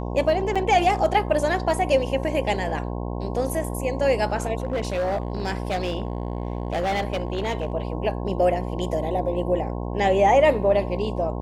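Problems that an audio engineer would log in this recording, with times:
buzz 60 Hz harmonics 18 -29 dBFS
0.55–0.56 gap 5.9 ms
4.6–7.74 clipped -20.5 dBFS

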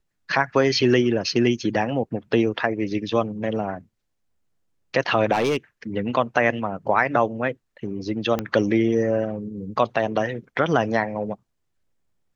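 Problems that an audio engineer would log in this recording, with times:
5.32–5.57 clipped -17 dBFS
8.39 pop -11 dBFS

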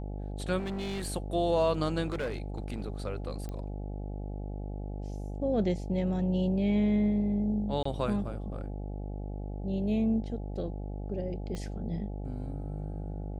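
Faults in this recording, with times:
buzz 50 Hz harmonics 17 -37 dBFS
0.58–1.07 clipped -31.5 dBFS
2.06–2.82 clipped -29 dBFS
3.49 pop -26 dBFS
7.83–7.85 gap 24 ms
11.55 pop -25 dBFS

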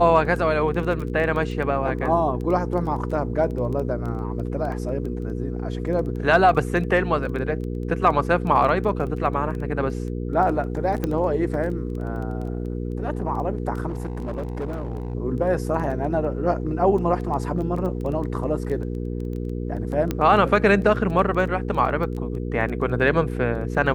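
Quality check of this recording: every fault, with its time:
crackle 10/s -29 dBFS
hum 60 Hz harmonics 8 -28 dBFS
11.04 pop -12 dBFS
13.88–15.15 clipped -24 dBFS
20.11 pop -11 dBFS

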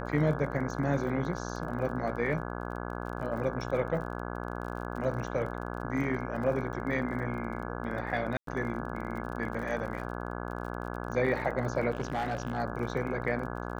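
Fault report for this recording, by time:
buzz 60 Hz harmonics 28 -37 dBFS
crackle 32/s -39 dBFS
8.37–8.47 gap 0.103 s
11.9–12.59 clipped -27 dBFS

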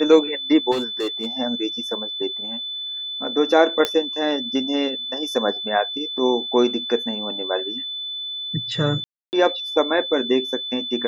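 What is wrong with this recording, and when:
tone 3500 Hz -27 dBFS
0.71–1.27 clipped -19.5 dBFS
3.85 pop -6 dBFS
9.04–9.33 gap 0.289 s

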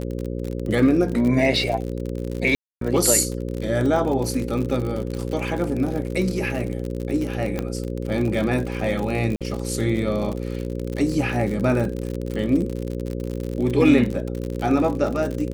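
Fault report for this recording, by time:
buzz 60 Hz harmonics 9 -28 dBFS
crackle 60/s -26 dBFS
2.55–2.81 gap 0.263 s
7.59 pop -12 dBFS
9.36–9.41 gap 47 ms

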